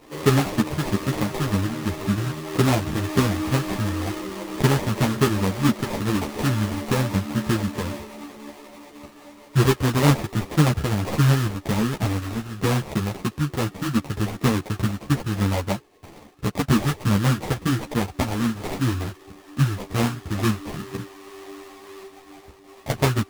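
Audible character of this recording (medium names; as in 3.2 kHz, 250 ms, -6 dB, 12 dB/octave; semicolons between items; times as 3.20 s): aliases and images of a low sample rate 1.5 kHz, jitter 20%; a shimmering, thickened sound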